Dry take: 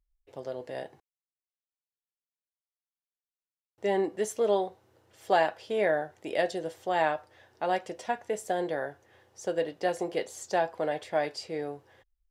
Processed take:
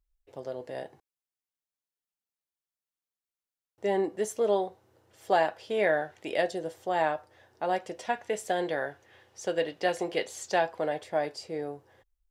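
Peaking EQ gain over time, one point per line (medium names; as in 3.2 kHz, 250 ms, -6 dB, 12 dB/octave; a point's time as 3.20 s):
peaking EQ 2.8 kHz 1.9 oct
5.52 s -2 dB
6.16 s +9 dB
6.51 s -3 dB
7.73 s -3 dB
8.24 s +6 dB
10.57 s +6 dB
11.09 s -4.5 dB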